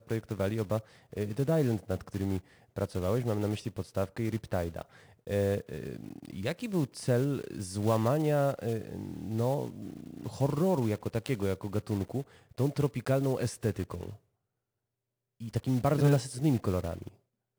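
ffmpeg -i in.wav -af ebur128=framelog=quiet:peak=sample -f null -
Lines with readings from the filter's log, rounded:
Integrated loudness:
  I:         -31.8 LUFS
  Threshold: -42.3 LUFS
Loudness range:
  LRA:         3.2 LU
  Threshold: -52.7 LUFS
  LRA low:   -34.4 LUFS
  LRA high:  -31.2 LUFS
Sample peak:
  Peak:      -14.0 dBFS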